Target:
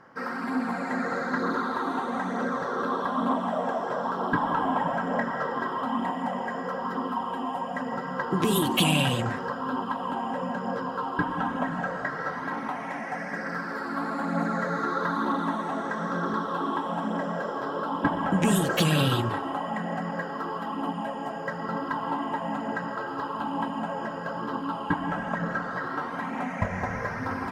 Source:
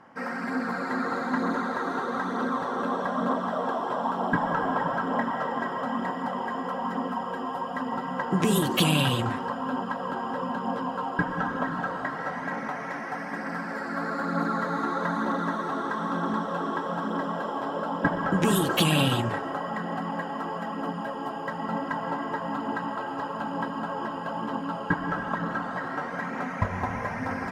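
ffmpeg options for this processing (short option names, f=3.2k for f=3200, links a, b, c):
-af "afftfilt=real='re*pow(10,6/40*sin(2*PI*(0.57*log(max(b,1)*sr/1024/100)/log(2)-(-0.74)*(pts-256)/sr)))':imag='im*pow(10,6/40*sin(2*PI*(0.57*log(max(b,1)*sr/1024/100)/log(2)-(-0.74)*(pts-256)/sr)))':win_size=1024:overlap=0.75,acontrast=73,volume=-7dB"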